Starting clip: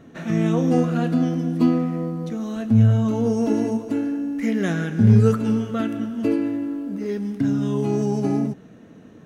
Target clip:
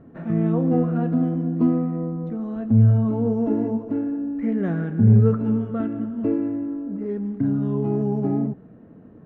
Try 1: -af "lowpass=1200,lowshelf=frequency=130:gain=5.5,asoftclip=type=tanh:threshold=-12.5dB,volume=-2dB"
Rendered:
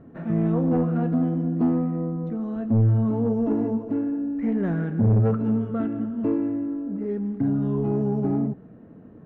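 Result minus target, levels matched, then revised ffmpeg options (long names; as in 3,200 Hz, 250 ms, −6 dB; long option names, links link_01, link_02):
soft clipping: distortion +14 dB
-af "lowpass=1200,lowshelf=frequency=130:gain=5.5,asoftclip=type=tanh:threshold=-2dB,volume=-2dB"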